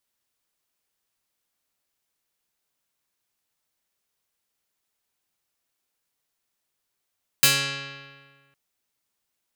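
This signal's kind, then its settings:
Karplus-Strong string C#3, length 1.11 s, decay 1.65 s, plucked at 0.44, medium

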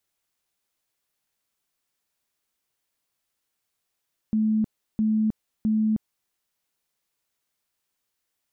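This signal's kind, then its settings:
tone bursts 217 Hz, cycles 68, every 0.66 s, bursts 3, −19 dBFS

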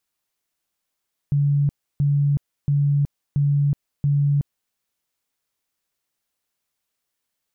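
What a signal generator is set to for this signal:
tone bursts 143 Hz, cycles 53, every 0.68 s, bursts 5, −15.5 dBFS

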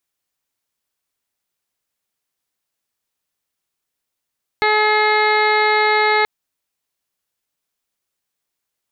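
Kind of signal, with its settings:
steady harmonic partials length 1.63 s, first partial 426 Hz, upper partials 1.5/−3.5/−3/0.5/−14/−19/−17/−10/−10 dB, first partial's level −19 dB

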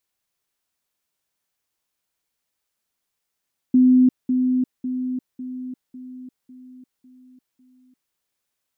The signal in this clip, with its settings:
level staircase 254 Hz −10.5 dBFS, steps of −6 dB, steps 8, 0.35 s 0.20 s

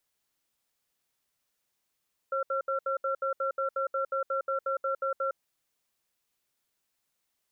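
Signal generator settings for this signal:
tone pair in a cadence 540 Hz, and 1,360 Hz, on 0.11 s, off 0.07 s, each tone −29.5 dBFS 3.00 s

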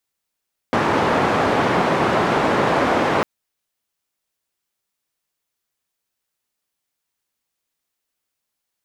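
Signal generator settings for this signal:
band-limited noise 130–1,000 Hz, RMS −18 dBFS 2.50 s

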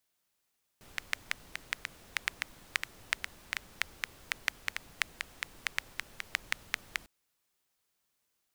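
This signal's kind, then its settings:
rain-like ticks over hiss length 6.25 s, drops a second 5.2, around 2,000 Hz, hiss −14.5 dB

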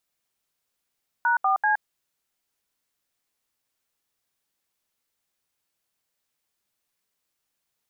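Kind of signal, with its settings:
touch tones "#4C", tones 119 ms, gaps 74 ms, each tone −21 dBFS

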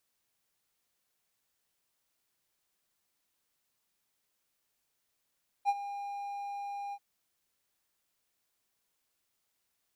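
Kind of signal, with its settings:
note with an ADSR envelope triangle 806 Hz, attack 40 ms, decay 43 ms, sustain −14 dB, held 1.28 s, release 54 ms −20.5 dBFS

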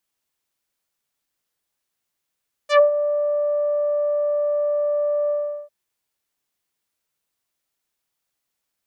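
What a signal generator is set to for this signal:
subtractive voice saw D5 24 dB per octave, low-pass 760 Hz, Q 0.97, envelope 4 octaves, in 0.11 s, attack 93 ms, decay 0.12 s, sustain −10 dB, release 0.39 s, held 2.61 s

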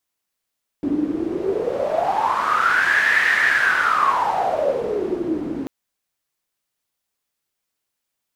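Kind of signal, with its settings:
wind from filtered noise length 4.84 s, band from 290 Hz, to 1,800 Hz, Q 11, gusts 1, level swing 7 dB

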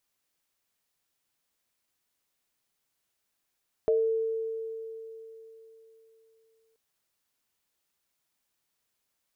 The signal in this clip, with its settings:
inharmonic partials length 2.88 s, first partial 448 Hz, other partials 625 Hz, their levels −5 dB, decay 3.62 s, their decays 0.31 s, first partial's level −20.5 dB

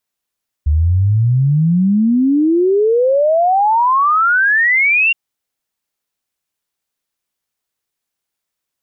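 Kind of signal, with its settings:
exponential sine sweep 72 Hz → 2,800 Hz 4.47 s −9.5 dBFS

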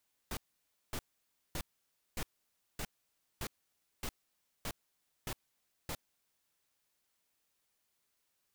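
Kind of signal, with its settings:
noise bursts pink, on 0.06 s, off 0.56 s, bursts 10, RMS −38.5 dBFS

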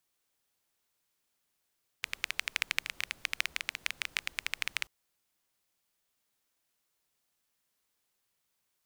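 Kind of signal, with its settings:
rain-like ticks over hiss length 2.84 s, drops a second 13, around 2,300 Hz, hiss −22 dB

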